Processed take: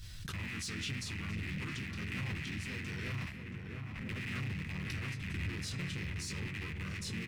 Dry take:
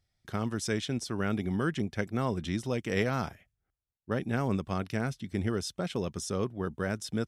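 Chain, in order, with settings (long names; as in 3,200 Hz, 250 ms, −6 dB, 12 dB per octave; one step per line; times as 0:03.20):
loose part that buzzes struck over −42 dBFS, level −21 dBFS
hum removal 231 Hz, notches 37
chorus effect 0.76 Hz, delay 19 ms, depth 3.2 ms
brickwall limiter −25 dBFS, peak gain reduction 9 dB
feedback echo with a low-pass in the loop 676 ms, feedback 62%, low-pass 1,800 Hz, level −7.5 dB
convolution reverb RT60 0.70 s, pre-delay 6 ms, DRR 13 dB
leveller curve on the samples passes 1
guitar amp tone stack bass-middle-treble 6-0-2
pitch-shifted copies added −7 semitones −18 dB, −4 semitones 0 dB
soft clipping −39 dBFS, distortion −18 dB
background raised ahead of every attack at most 23 dB per second
level +7.5 dB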